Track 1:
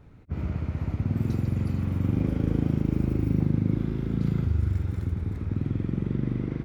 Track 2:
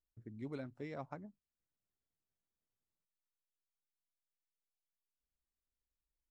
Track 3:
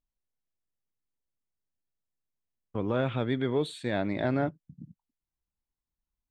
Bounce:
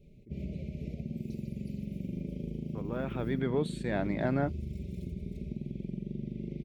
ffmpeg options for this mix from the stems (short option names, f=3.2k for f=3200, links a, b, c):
-filter_complex "[0:a]aecho=1:1:5.1:0.82,volume=-6dB[a];[1:a]volume=-5.5dB[b];[2:a]equalizer=f=3.6k:t=o:w=0.35:g=-7,volume=-2.5dB,afade=t=in:st=2.92:d=0.56:silence=0.446684[c];[a][b]amix=inputs=2:normalize=0,asuperstop=centerf=1200:order=12:qfactor=0.75,acompressor=threshold=-33dB:ratio=6,volume=0dB[d];[c][d]amix=inputs=2:normalize=0"